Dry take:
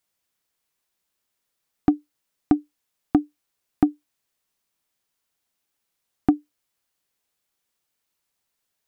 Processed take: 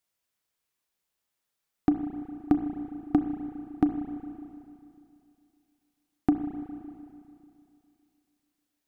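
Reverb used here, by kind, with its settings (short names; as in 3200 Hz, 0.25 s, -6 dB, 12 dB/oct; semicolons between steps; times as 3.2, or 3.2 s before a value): spring tank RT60 2.6 s, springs 31/37 ms, chirp 55 ms, DRR 6 dB; gain -4.5 dB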